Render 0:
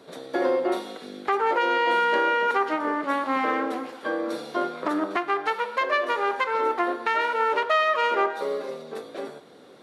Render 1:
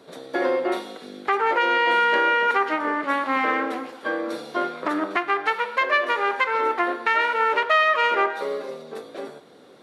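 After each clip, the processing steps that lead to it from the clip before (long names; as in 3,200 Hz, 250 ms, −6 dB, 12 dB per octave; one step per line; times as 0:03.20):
dynamic equaliser 2,100 Hz, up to +6 dB, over −39 dBFS, Q 1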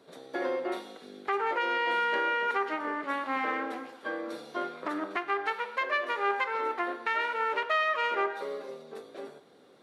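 tuned comb filter 400 Hz, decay 0.67 s, mix 60%
level −1 dB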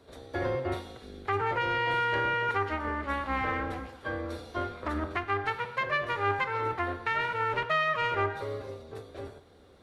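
sub-octave generator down 2 octaves, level +2 dB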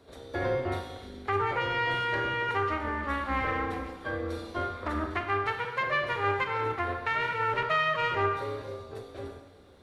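four-comb reverb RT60 1.1 s, combs from 32 ms, DRR 6 dB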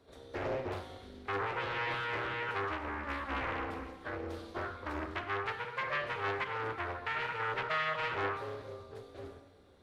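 highs frequency-modulated by the lows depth 0.58 ms
level −6.5 dB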